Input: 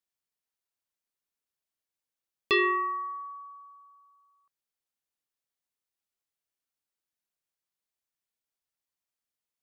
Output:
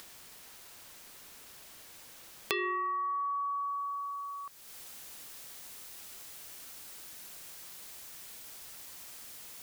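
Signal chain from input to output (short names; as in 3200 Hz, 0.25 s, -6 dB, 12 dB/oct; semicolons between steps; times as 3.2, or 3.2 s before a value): upward compressor, threshold -30 dBFS; high shelf 4600 Hz -2 dB, from 2.86 s +3.5 dB; compressor 12:1, threshold -37 dBFS, peak gain reduction 16 dB; gain +6 dB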